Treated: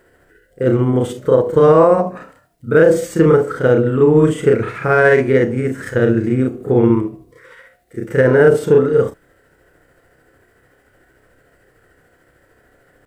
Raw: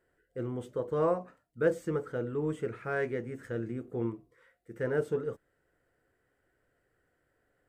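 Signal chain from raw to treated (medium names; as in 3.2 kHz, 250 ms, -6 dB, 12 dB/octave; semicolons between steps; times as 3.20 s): granular stretch 1.7×, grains 149 ms; loudness maximiser +23 dB; trim -1 dB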